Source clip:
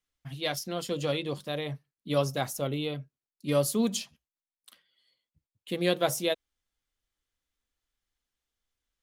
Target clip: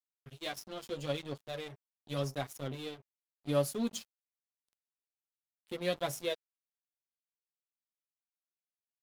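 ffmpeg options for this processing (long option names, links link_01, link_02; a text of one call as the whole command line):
ffmpeg -i in.wav -af "flanger=delay=7:depth=2.5:regen=0:speed=0.83:shape=sinusoidal,aeval=exprs='sgn(val(0))*max(abs(val(0))-0.0075,0)':channel_layout=same,volume=-3dB" out.wav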